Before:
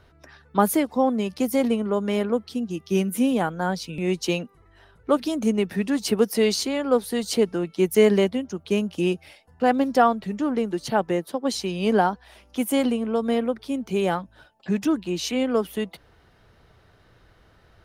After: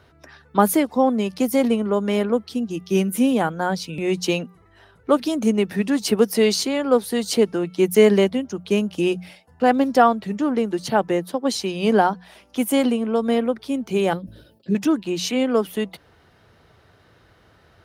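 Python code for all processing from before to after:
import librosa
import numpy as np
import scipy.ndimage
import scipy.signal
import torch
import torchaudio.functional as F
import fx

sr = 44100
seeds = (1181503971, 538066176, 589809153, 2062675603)

y = fx.chain(x, sr, fx.curve_eq(hz=(350.0, 540.0, 770.0, 2400.0, 4500.0, 7000.0, 12000.0), db=(0, -3, -22, -14, -5, -15, -1)),
    fx.sustainer(db_per_s=73.0), at=(14.13, 14.75))
y = scipy.signal.sosfilt(scipy.signal.butter(2, 70.0, 'highpass', fs=sr, output='sos'), y)
y = fx.hum_notches(y, sr, base_hz=60, count=3)
y = y * librosa.db_to_amplitude(3.0)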